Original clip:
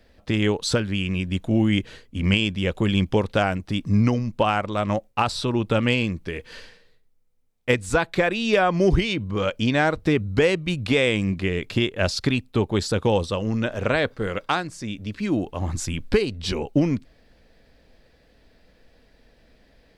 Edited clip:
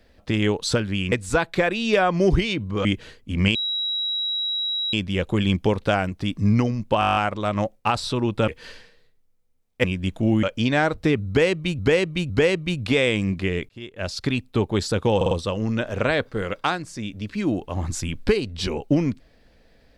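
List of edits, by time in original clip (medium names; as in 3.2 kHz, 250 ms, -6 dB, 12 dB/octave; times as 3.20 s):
1.12–1.71 s: swap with 7.72–9.45 s
2.41 s: add tone 3.87 kHz -22.5 dBFS 1.38 s
4.48 s: stutter 0.02 s, 9 plays
5.80–6.36 s: delete
10.30–10.81 s: loop, 3 plays
11.69–12.44 s: fade in
13.16 s: stutter 0.05 s, 4 plays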